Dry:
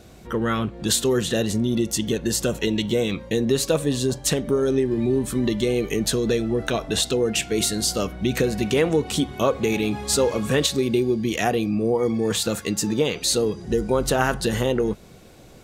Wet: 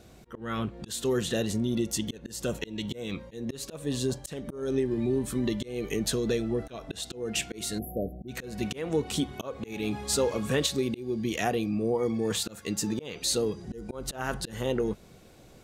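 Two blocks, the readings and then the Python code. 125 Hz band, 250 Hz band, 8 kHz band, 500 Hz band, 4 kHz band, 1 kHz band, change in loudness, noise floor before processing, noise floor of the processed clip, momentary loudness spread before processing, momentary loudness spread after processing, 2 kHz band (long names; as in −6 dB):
−8.0 dB, −7.5 dB, −8.5 dB, −9.0 dB, −8.5 dB, −9.0 dB, −8.5 dB, −46 dBFS, −53 dBFS, 4 LU, 10 LU, −9.0 dB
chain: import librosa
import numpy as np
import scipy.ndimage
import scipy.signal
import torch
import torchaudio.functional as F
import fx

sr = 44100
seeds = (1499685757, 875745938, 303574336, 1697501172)

y = fx.auto_swell(x, sr, attack_ms=245.0)
y = fx.spec_erase(y, sr, start_s=7.79, length_s=0.49, low_hz=770.0, high_hz=11000.0)
y = y * librosa.db_to_amplitude(-6.0)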